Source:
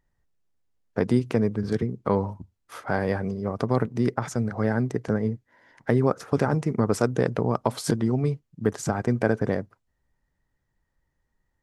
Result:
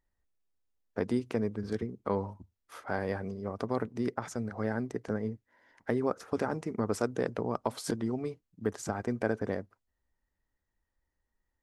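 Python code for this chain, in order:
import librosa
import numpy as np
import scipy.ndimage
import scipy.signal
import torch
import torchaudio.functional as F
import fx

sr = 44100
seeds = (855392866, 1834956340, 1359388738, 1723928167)

y = fx.peak_eq(x, sr, hz=140.0, db=-13.5, octaves=0.4)
y = F.gain(torch.from_numpy(y), -7.0).numpy()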